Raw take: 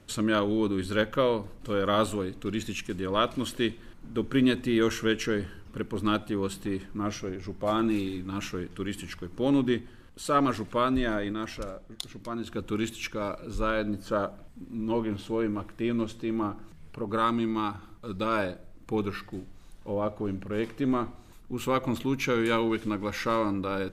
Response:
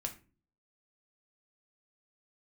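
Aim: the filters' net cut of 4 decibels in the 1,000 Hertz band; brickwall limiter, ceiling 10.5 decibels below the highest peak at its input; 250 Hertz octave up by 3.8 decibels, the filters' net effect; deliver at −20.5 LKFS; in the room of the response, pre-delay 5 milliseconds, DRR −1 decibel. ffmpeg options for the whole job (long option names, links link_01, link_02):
-filter_complex "[0:a]equalizer=frequency=250:width_type=o:gain=5,equalizer=frequency=1000:width_type=o:gain=-5.5,alimiter=limit=-20.5dB:level=0:latency=1,asplit=2[link_01][link_02];[1:a]atrim=start_sample=2205,adelay=5[link_03];[link_02][link_03]afir=irnorm=-1:irlink=0,volume=1.5dB[link_04];[link_01][link_04]amix=inputs=2:normalize=0,volume=6.5dB"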